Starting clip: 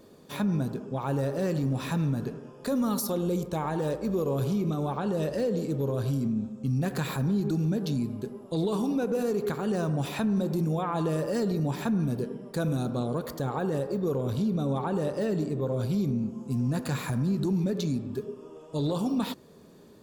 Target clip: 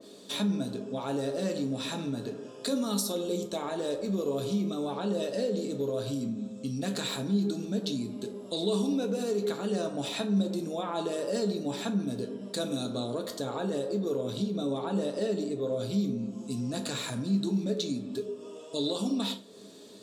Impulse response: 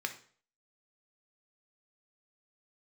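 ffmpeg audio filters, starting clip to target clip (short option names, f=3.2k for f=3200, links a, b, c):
-filter_complex "[0:a]equalizer=f=125:t=o:w=1:g=10,equalizer=f=500:t=o:w=1:g=6,equalizer=f=4k:t=o:w=1:g=9,equalizer=f=8k:t=o:w=1:g=11[a];[1:a]atrim=start_sample=2205,asetrate=70560,aresample=44100[b];[a][b]afir=irnorm=-1:irlink=0,asplit=2[c][d];[d]acompressor=threshold=-39dB:ratio=6,volume=1.5dB[e];[c][e]amix=inputs=2:normalize=0,adynamicequalizer=threshold=0.00562:dfrequency=2100:dqfactor=0.7:tfrequency=2100:tqfactor=0.7:attack=5:release=100:ratio=0.375:range=2:mode=cutabove:tftype=highshelf,volume=-4dB"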